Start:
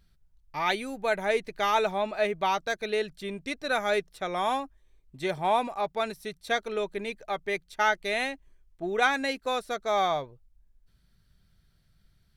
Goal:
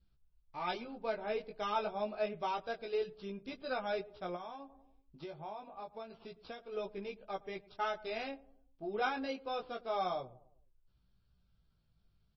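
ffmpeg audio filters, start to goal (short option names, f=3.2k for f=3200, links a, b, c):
-filter_complex "[0:a]acrusher=samples=5:mix=1:aa=0.000001,asplit=2[a][b];[b]adelay=109,lowpass=f=810:p=1,volume=-18dB,asplit=2[c][d];[d]adelay=109,lowpass=f=810:p=1,volume=0.52,asplit=2[e][f];[f]adelay=109,lowpass=f=810:p=1,volume=0.52,asplit=2[g][h];[h]adelay=109,lowpass=f=810:p=1,volume=0.52[i];[a][c][e][g][i]amix=inputs=5:normalize=0,flanger=delay=15.5:depth=3.7:speed=0.28,asplit=3[j][k][l];[j]afade=t=out:st=4.35:d=0.02[m];[k]acompressor=threshold=-37dB:ratio=6,afade=t=in:st=4.35:d=0.02,afade=t=out:st=6.72:d=0.02[n];[l]afade=t=in:st=6.72:d=0.02[o];[m][n][o]amix=inputs=3:normalize=0,adynamicequalizer=threshold=0.00447:dfrequency=940:dqfactor=4.2:tfrequency=940:tqfactor=4.2:attack=5:release=100:ratio=0.375:range=2.5:mode=cutabove:tftype=bell,lowpass=4.2k,equalizer=f=1.9k:w=3.4:g=-12.5,volume=-5dB" -ar 22050 -c:a libmp3lame -b:a 24k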